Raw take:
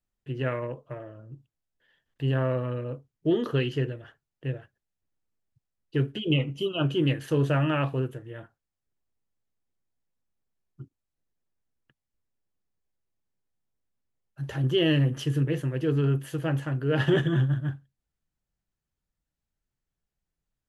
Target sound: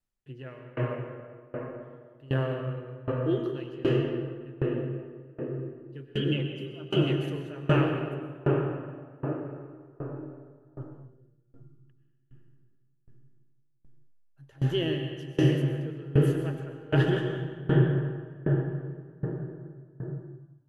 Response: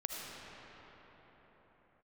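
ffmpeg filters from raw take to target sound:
-filter_complex "[0:a]asettb=1/sr,asplit=3[s0][s1][s2];[s0]atrim=end=2.674[s3];[s1]atrim=start=2.67:end=3.38,asetpts=PTS-STARTPTS,afade=t=in:d=0.004:c=qsin,afade=t=out:st=0.706:d=0.004:c=qsin,aecho=1:1:2.5:0.71,atrim=end_sample=31311[s4];[s2]atrim=start=3.376[s5];[s3][s4]acrossfade=d=0.004:c1=hsin:c2=qsin[s6];[s6][s5]acrossfade=d=0.004:c1=qsin:c2=hsin[s7];[1:a]atrim=start_sample=2205,asetrate=26460,aresample=44100[s8];[s7][s8]afir=irnorm=-1:irlink=0,aeval=exprs='val(0)*pow(10,-24*if(lt(mod(1.3*n/s,1),2*abs(1.3)/1000),1-mod(1.3*n/s,1)/(2*abs(1.3)/1000),(mod(1.3*n/s,1)-2*abs(1.3)/1000)/(1-2*abs(1.3)/1000))/20)':c=same"

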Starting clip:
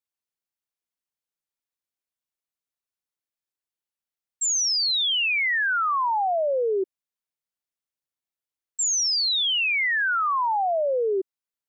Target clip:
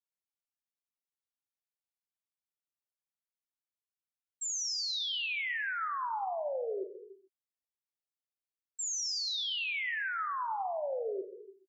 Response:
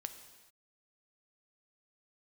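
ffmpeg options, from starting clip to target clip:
-filter_complex "[1:a]atrim=start_sample=2205[s0];[0:a][s0]afir=irnorm=-1:irlink=0,volume=0.355"

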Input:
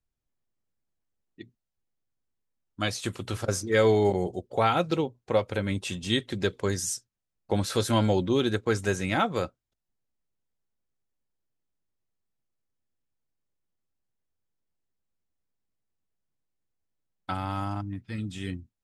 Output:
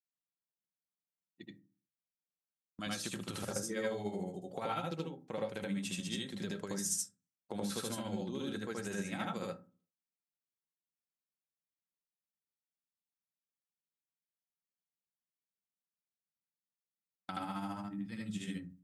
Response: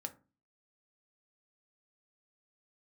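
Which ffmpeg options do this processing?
-filter_complex "[0:a]highpass=120,equalizer=f=180:w=1.8:g=11.5,agate=range=0.2:threshold=0.00501:ratio=16:detection=peak,tremolo=f=14:d=0.55,acompressor=threshold=0.0282:ratio=5,lowshelf=f=320:g=-6.5,crystalizer=i=1:c=0,asplit=2[s0][s1];[1:a]atrim=start_sample=2205,adelay=77[s2];[s1][s2]afir=irnorm=-1:irlink=0,volume=1.5[s3];[s0][s3]amix=inputs=2:normalize=0,volume=0.531"

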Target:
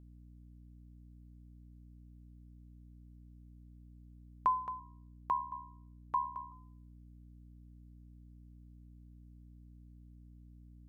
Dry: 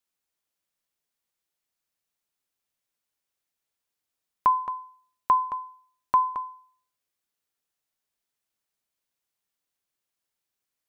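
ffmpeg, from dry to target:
-filter_complex "[0:a]asettb=1/sr,asplit=3[s0][s1][s2];[s0]atrim=end=4.794[s3];[s1]atrim=start=4.79:end=6.52,asetpts=PTS-STARTPTS,afade=t=in:d=0.004:c=qsin,afade=t=out:st=1.726:d=0.004:c=qsin,aeval=exprs='val(0)*sin(2*PI*37*n/s)':c=same[s4];[s2]atrim=start=6.516[s5];[s3][s4]acrossfade=d=0.004:c1=hsin:c2=qsin[s6];[s6][s5]acrossfade=d=0.004:c1=qsin:c2=hsin,aeval=exprs='val(0)+0.00562*(sin(2*PI*60*n/s)+sin(2*PI*2*60*n/s)/2+sin(2*PI*3*60*n/s)/3+sin(2*PI*4*60*n/s)/4+sin(2*PI*5*60*n/s)/5)':c=same,volume=0.355"

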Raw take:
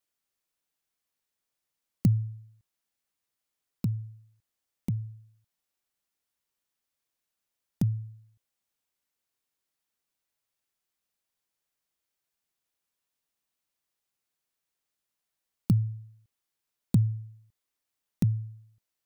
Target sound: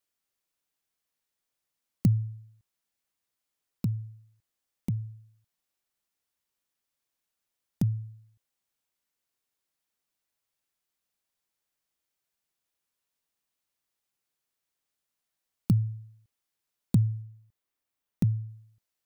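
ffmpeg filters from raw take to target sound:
-filter_complex "[0:a]asettb=1/sr,asplit=3[s0][s1][s2];[s0]atrim=end=17.224[s3];[s1]atrim=start=17.22:end=18.49,asetpts=PTS-STARTPTS,afade=t=in:d=0.004:c=qsin,afade=t=out:st=1.266:d=0.004:c=qsin,equalizer=f=7100:w=0.37:g=-4.5[s4];[s2]atrim=start=18.486[s5];[s3][s4]acrossfade=d=0.004:c1=hsin:c2=qsin[s6];[s6][s5]acrossfade=d=0.004:c1=qsin:c2=hsin"

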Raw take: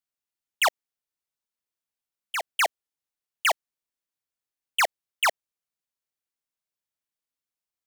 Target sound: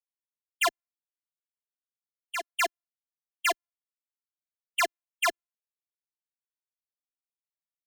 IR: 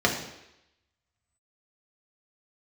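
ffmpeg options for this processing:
-af "afreqshift=-100,afftfilt=real='hypot(re,im)*cos(PI*b)':imag='0':win_size=512:overlap=0.75,afftdn=nr=31:nf=-49"

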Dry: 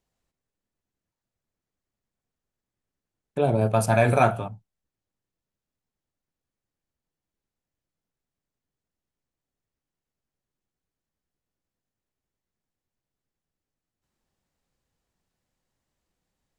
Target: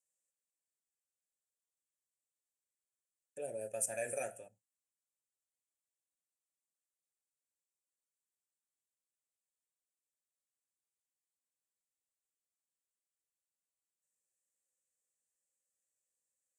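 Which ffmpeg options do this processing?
-filter_complex "[0:a]equalizer=f=500:t=o:w=1:g=-5,equalizer=f=4000:t=o:w=1:g=-4,equalizer=f=8000:t=o:w=1:g=12,aexciter=amount=15.2:drive=9.7:freq=6300,asplit=3[s0][s1][s2];[s0]bandpass=f=530:t=q:w=8,volume=1[s3];[s1]bandpass=f=1840:t=q:w=8,volume=0.501[s4];[s2]bandpass=f=2480:t=q:w=8,volume=0.355[s5];[s3][s4][s5]amix=inputs=3:normalize=0,volume=0.447"

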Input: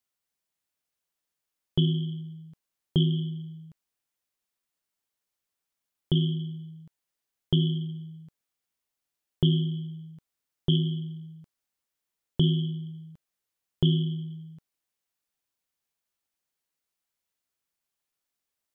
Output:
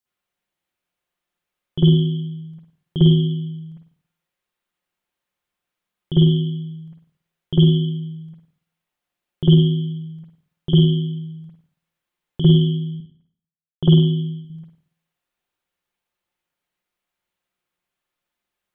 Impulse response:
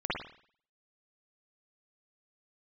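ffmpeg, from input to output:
-filter_complex "[0:a]asettb=1/sr,asplit=3[s0][s1][s2];[s0]atrim=end=12.954[s3];[s1]atrim=start=12.95:end=14.45,asetpts=PTS-STARTPTS,afade=t=in:d=0.004:c=qsin,afade=t=out:st=1.496:d=0.004:c=qsin,agate=range=0.0224:threshold=0.0178:ratio=3:detection=peak[s4];[s2]atrim=start=14.446[s5];[s3][s4]acrossfade=d=0.004:c1=hsin:c2=qsin[s6];[s6][s5]acrossfade=d=0.004:c1=qsin:c2=hsin[s7];[1:a]atrim=start_sample=2205[s8];[s7][s8]afir=irnorm=-1:irlink=0"

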